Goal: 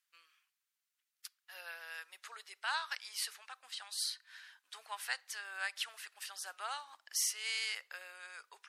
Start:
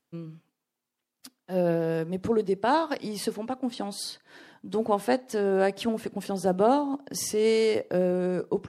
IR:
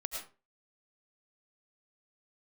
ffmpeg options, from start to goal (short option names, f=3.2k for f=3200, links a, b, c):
-af "highpass=f=1.4k:w=0.5412,highpass=f=1.4k:w=1.3066,volume=-1.5dB"